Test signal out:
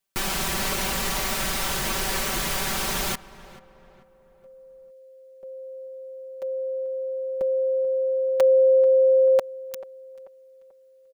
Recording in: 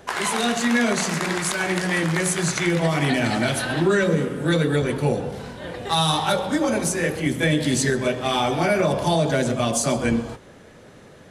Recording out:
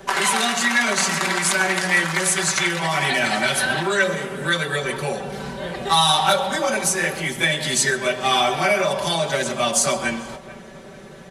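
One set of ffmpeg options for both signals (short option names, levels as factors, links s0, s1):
-filter_complex "[0:a]aecho=1:1:5.2:0.85,acrossover=split=640|930[s0][s1][s2];[s0]acompressor=threshold=0.0282:ratio=10[s3];[s3][s1][s2]amix=inputs=3:normalize=0,asplit=2[s4][s5];[s5]adelay=438,lowpass=f=1900:p=1,volume=0.141,asplit=2[s6][s7];[s7]adelay=438,lowpass=f=1900:p=1,volume=0.45,asplit=2[s8][s9];[s9]adelay=438,lowpass=f=1900:p=1,volume=0.45,asplit=2[s10][s11];[s11]adelay=438,lowpass=f=1900:p=1,volume=0.45[s12];[s4][s6][s8][s10][s12]amix=inputs=5:normalize=0,volume=1.41"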